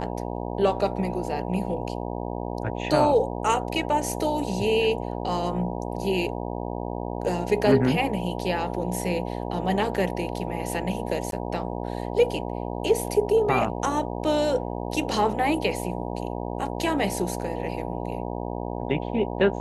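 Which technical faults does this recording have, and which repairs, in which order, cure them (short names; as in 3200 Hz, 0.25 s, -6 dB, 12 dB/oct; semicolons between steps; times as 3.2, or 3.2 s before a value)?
buzz 60 Hz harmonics 16 -31 dBFS
11.31–11.32 gap 12 ms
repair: de-hum 60 Hz, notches 16; interpolate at 11.31, 12 ms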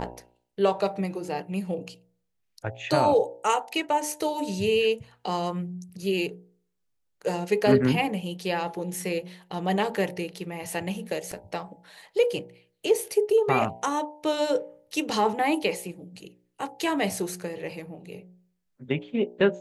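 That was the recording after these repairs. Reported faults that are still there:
none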